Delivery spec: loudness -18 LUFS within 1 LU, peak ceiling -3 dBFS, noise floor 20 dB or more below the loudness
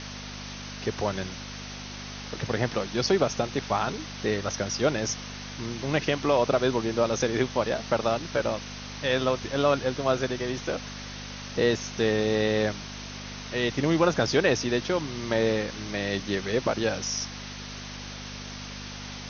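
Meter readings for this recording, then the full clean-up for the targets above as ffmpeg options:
hum 50 Hz; harmonics up to 250 Hz; hum level -39 dBFS; noise floor -39 dBFS; noise floor target -48 dBFS; loudness -28.0 LUFS; peak -9.0 dBFS; loudness target -18.0 LUFS
-> -af "bandreject=f=50:t=h:w=4,bandreject=f=100:t=h:w=4,bandreject=f=150:t=h:w=4,bandreject=f=200:t=h:w=4,bandreject=f=250:t=h:w=4"
-af "afftdn=nr=9:nf=-39"
-af "volume=10dB,alimiter=limit=-3dB:level=0:latency=1"

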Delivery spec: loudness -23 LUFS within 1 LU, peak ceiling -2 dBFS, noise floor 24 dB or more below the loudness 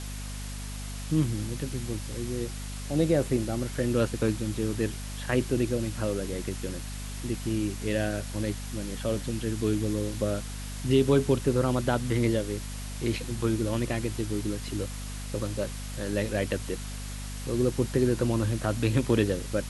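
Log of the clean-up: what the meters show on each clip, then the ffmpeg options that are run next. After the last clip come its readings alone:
hum 50 Hz; harmonics up to 250 Hz; hum level -35 dBFS; noise floor -37 dBFS; noise floor target -54 dBFS; loudness -29.5 LUFS; peak -10.5 dBFS; loudness target -23.0 LUFS
-> -af "bandreject=f=50:t=h:w=4,bandreject=f=100:t=h:w=4,bandreject=f=150:t=h:w=4,bandreject=f=200:t=h:w=4,bandreject=f=250:t=h:w=4"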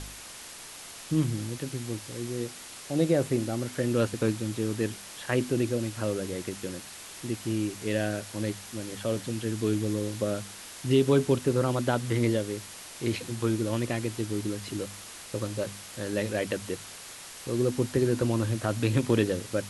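hum none; noise floor -45 dBFS; noise floor target -54 dBFS
-> -af "afftdn=nr=9:nf=-45"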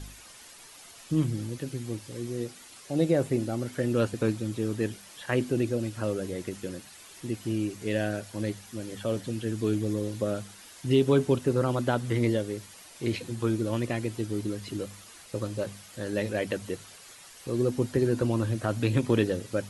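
noise floor -50 dBFS; noise floor target -54 dBFS
-> -af "afftdn=nr=6:nf=-50"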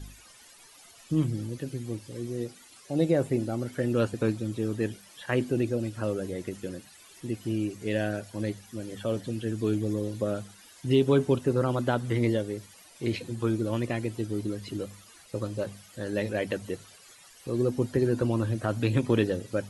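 noise floor -54 dBFS; loudness -29.5 LUFS; peak -11.0 dBFS; loudness target -23.0 LUFS
-> -af "volume=6.5dB"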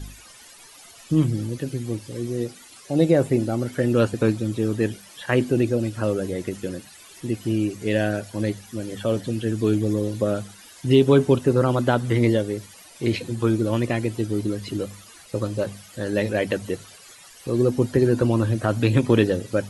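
loudness -23.0 LUFS; peak -4.5 dBFS; noise floor -47 dBFS

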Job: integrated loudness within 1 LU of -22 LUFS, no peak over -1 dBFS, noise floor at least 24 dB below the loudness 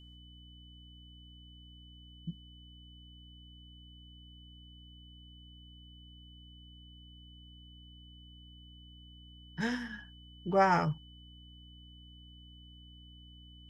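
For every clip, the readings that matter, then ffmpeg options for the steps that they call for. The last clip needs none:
hum 60 Hz; harmonics up to 300 Hz; hum level -53 dBFS; steady tone 3000 Hz; tone level -57 dBFS; loudness -33.0 LUFS; peak -14.5 dBFS; loudness target -22.0 LUFS
-> -af "bandreject=f=60:t=h:w=4,bandreject=f=120:t=h:w=4,bandreject=f=180:t=h:w=4,bandreject=f=240:t=h:w=4,bandreject=f=300:t=h:w=4"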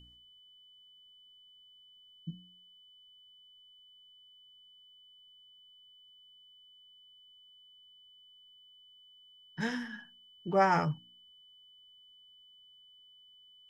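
hum none; steady tone 3000 Hz; tone level -57 dBFS
-> -af "bandreject=f=3k:w=30"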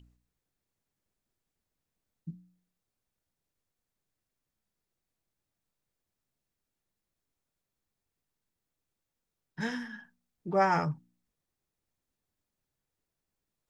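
steady tone none; loudness -31.0 LUFS; peak -14.0 dBFS; loudness target -22.0 LUFS
-> -af "volume=9dB"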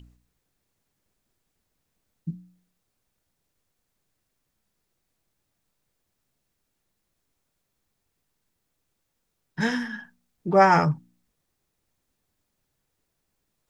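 loudness -22.0 LUFS; peak -5.0 dBFS; noise floor -78 dBFS

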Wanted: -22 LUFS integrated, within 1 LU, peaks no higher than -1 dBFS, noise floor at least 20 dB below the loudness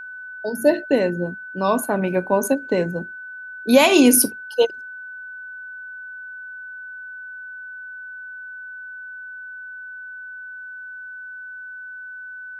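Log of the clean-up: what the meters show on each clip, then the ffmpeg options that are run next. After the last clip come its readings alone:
steady tone 1500 Hz; tone level -33 dBFS; loudness -19.0 LUFS; peak -1.0 dBFS; loudness target -22.0 LUFS
-> -af "bandreject=f=1.5k:w=30"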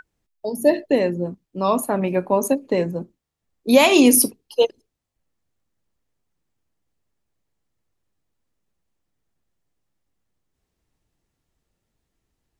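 steady tone none; loudness -19.0 LUFS; peak -1.5 dBFS; loudness target -22.0 LUFS
-> -af "volume=-3dB"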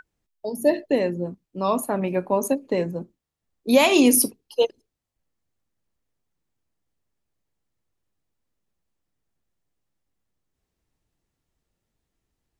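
loudness -22.0 LUFS; peak -4.5 dBFS; noise floor -82 dBFS

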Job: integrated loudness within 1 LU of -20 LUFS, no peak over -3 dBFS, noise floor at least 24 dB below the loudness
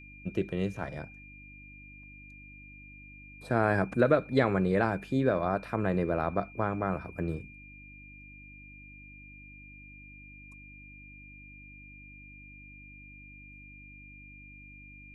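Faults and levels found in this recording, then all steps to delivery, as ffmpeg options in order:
hum 50 Hz; harmonics up to 300 Hz; hum level -52 dBFS; steady tone 2400 Hz; tone level -50 dBFS; loudness -29.5 LUFS; peak -10.5 dBFS; loudness target -20.0 LUFS
-> -af "bandreject=f=50:t=h:w=4,bandreject=f=100:t=h:w=4,bandreject=f=150:t=h:w=4,bandreject=f=200:t=h:w=4,bandreject=f=250:t=h:w=4,bandreject=f=300:t=h:w=4"
-af "bandreject=f=2.4k:w=30"
-af "volume=9.5dB,alimiter=limit=-3dB:level=0:latency=1"

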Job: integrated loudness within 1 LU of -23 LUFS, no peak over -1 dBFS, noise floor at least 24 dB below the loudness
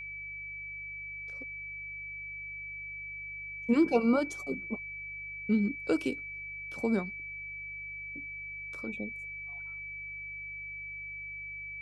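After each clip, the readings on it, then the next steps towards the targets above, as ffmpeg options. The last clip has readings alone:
hum 50 Hz; harmonics up to 150 Hz; hum level -55 dBFS; steady tone 2300 Hz; tone level -39 dBFS; loudness -35.0 LUFS; peak -14.0 dBFS; loudness target -23.0 LUFS
-> -af "bandreject=f=50:t=h:w=4,bandreject=f=100:t=h:w=4,bandreject=f=150:t=h:w=4"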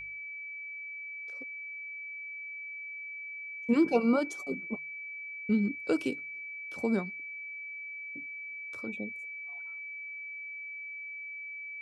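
hum none; steady tone 2300 Hz; tone level -39 dBFS
-> -af "bandreject=f=2.3k:w=30"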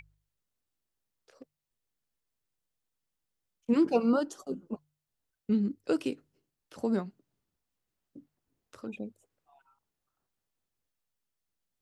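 steady tone none; loudness -31.0 LUFS; peak -14.0 dBFS; loudness target -23.0 LUFS
-> -af "volume=8dB"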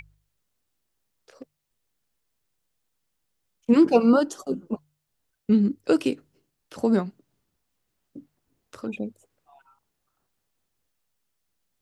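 loudness -23.0 LUFS; peak -6.0 dBFS; noise floor -78 dBFS

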